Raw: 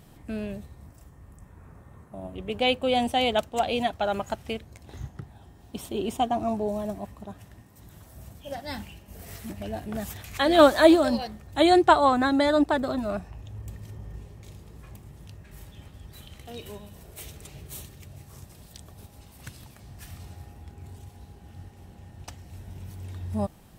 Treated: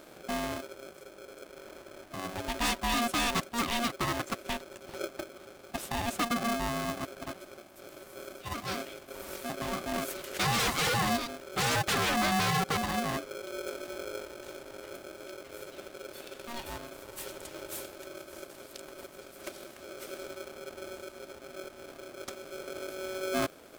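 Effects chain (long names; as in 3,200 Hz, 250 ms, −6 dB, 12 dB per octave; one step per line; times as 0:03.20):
dynamic equaliser 490 Hz, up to −7 dB, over −36 dBFS, Q 0.96
wave folding −23 dBFS
ring modulator with a square carrier 470 Hz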